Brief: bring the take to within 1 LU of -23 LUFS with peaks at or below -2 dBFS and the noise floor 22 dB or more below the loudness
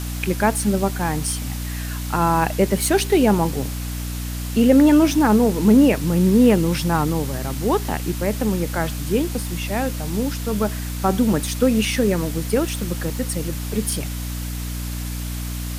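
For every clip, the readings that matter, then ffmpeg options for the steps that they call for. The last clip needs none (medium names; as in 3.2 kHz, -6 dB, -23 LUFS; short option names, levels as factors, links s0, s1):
hum 60 Hz; highest harmonic 300 Hz; hum level -25 dBFS; noise floor -28 dBFS; noise floor target -43 dBFS; loudness -20.5 LUFS; peak level -4.0 dBFS; loudness target -23.0 LUFS
-> -af "bandreject=f=60:t=h:w=6,bandreject=f=120:t=h:w=6,bandreject=f=180:t=h:w=6,bandreject=f=240:t=h:w=6,bandreject=f=300:t=h:w=6"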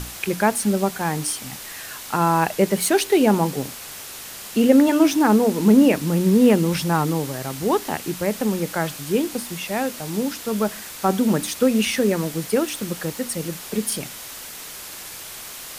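hum not found; noise floor -37 dBFS; noise floor target -43 dBFS
-> -af "afftdn=nr=6:nf=-37"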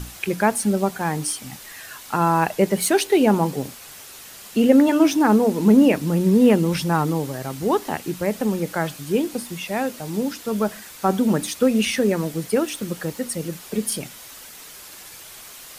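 noise floor -41 dBFS; noise floor target -43 dBFS
-> -af "afftdn=nr=6:nf=-41"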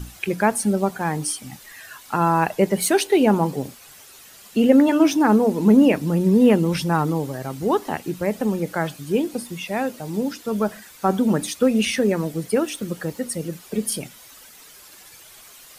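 noise floor -46 dBFS; loudness -21.0 LUFS; peak level -3.0 dBFS; loudness target -23.0 LUFS
-> -af "volume=0.794"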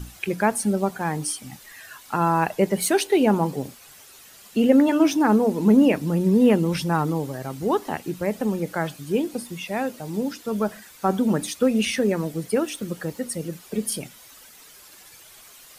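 loudness -23.0 LUFS; peak level -5.0 dBFS; noise floor -48 dBFS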